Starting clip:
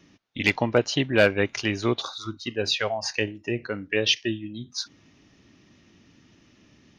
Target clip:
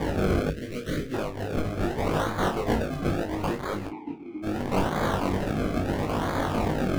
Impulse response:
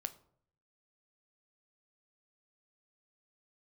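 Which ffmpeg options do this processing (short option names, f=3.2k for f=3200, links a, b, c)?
-filter_complex "[0:a]aeval=exprs='val(0)+0.5*0.0376*sgn(val(0))':c=same,asettb=1/sr,asplit=3[a][b][c];[a]atrim=end=2.514[d];[b]atrim=start=2.51:end=3.15,asetpts=PTS-STARTPTS,afade=t=in:d=0.004:c=qsin,afade=t=out:st=0.636:d=0.004:c=qsin,equalizer=f=1k:w=0.9:g=12.5[e];[c]atrim=start=3.146[f];[d][e]acrossfade=d=0.004:c1=hsin:c2=qsin[g];[g][f]acrossfade=d=0.004:c1=qsin:c2=hsin,asplit=2[h][i];[i]aecho=0:1:250:0.266[j];[h][j]amix=inputs=2:normalize=0,acompressor=threshold=-32dB:ratio=12,crystalizer=i=4:c=0,acrusher=samples=32:mix=1:aa=0.000001:lfo=1:lforange=32:lforate=0.75,aeval=exprs='(mod(8.41*val(0)+1,2)-1)/8.41':c=same,asplit=3[k][l][m];[k]afade=t=out:st=3.86:d=0.02[n];[l]asplit=3[o][p][q];[o]bandpass=f=300:t=q:w=8,volume=0dB[r];[p]bandpass=f=870:t=q:w=8,volume=-6dB[s];[q]bandpass=f=2.24k:t=q:w=8,volume=-9dB[t];[r][s][t]amix=inputs=3:normalize=0,afade=t=in:st=3.86:d=0.02,afade=t=out:st=4.42:d=0.02[u];[m]afade=t=in:st=4.42:d=0.02[v];[n][u][v]amix=inputs=3:normalize=0,asplit=2[w][x];[x]adelay=32,volume=-8dB[y];[w][y]amix=inputs=2:normalize=0,flanger=delay=19:depth=2.1:speed=1.8,asettb=1/sr,asplit=3[z][aa][ab];[z]atrim=end=0.504[ac];[aa]atrim=start=0.5:end=1.14,asetpts=PTS-STARTPTS,afade=t=in:d=0.004:c=qsin,afade=t=out:st=0.636:d=0.004:c=qsin,asuperstop=centerf=880:order=4:qfactor=0.79[ad];[ab]atrim=start=1.136[ae];[ac][ad]acrossfade=d=0.004:c1=hsin:c2=qsin[af];[af][ae]acrossfade=d=0.004:c1=qsin:c2=hsin,highshelf=f=3.1k:g=-11,volume=6.5dB"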